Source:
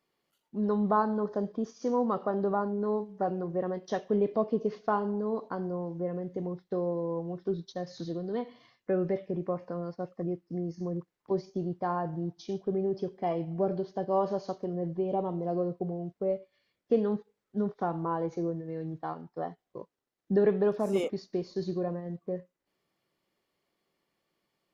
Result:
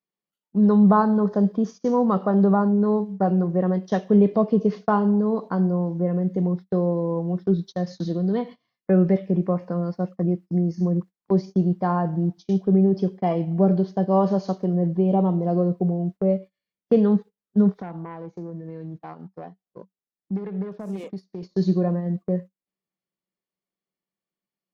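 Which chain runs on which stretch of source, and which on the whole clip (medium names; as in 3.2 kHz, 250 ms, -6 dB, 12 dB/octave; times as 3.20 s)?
17.69–21.43 s: self-modulated delay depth 0.2 ms + compression 8:1, threshold -39 dBFS
whole clip: gate -44 dBFS, range -22 dB; peaking EQ 190 Hz +11.5 dB 0.31 oct; trim +6.5 dB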